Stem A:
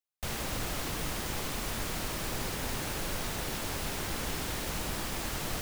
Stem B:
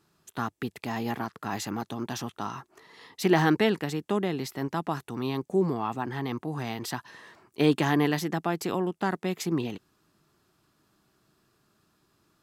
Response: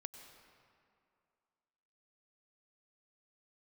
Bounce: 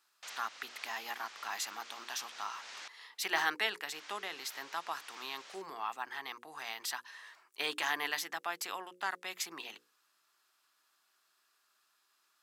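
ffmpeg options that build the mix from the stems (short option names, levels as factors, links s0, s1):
-filter_complex "[0:a]lowpass=f=6300:w=0.5412,lowpass=f=6300:w=1.3066,volume=0.422,asplit=3[s0][s1][s2];[s0]atrim=end=2.88,asetpts=PTS-STARTPTS,afade=t=out:st=2.876:d=0.004:c=hsin[s3];[s1]atrim=start=2.88:end=3.92,asetpts=PTS-STARTPTS,volume=0[s4];[s2]atrim=start=3.92,asetpts=PTS-STARTPTS,afade=t=in:d=0.004:c=hsin[s5];[s3][s4][s5]concat=n=3:v=0:a=1,asplit=2[s6][s7];[s7]volume=0.355[s8];[1:a]bandreject=f=60:t=h:w=6,bandreject=f=120:t=h:w=6,bandreject=f=180:t=h:w=6,bandreject=f=240:t=h:w=6,bandreject=f=300:t=h:w=6,bandreject=f=360:t=h:w=6,bandreject=f=420:t=h:w=6,bandreject=f=480:t=h:w=6,bandreject=f=540:t=h:w=6,volume=0.891,asplit=2[s9][s10];[s10]apad=whole_len=247758[s11];[s6][s11]sidechaincompress=threshold=0.0126:ratio=8:attack=30:release=363[s12];[2:a]atrim=start_sample=2205[s13];[s8][s13]afir=irnorm=-1:irlink=0[s14];[s12][s9][s14]amix=inputs=3:normalize=0,highpass=1200"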